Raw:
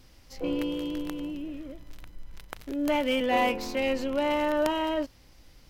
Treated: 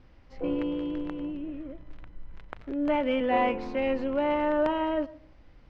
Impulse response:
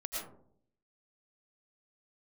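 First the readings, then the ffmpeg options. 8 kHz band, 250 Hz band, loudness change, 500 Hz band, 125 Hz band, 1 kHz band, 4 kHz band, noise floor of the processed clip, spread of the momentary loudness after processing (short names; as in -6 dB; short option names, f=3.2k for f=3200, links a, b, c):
under -20 dB, +0.5 dB, 0.0 dB, +0.5 dB, +0.5 dB, 0.0 dB, -8.0 dB, -54 dBFS, 14 LU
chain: -filter_complex "[0:a]lowpass=2k,asplit=2[a][b];[1:a]atrim=start_sample=2205[c];[b][c]afir=irnorm=-1:irlink=0,volume=-22dB[d];[a][d]amix=inputs=2:normalize=0"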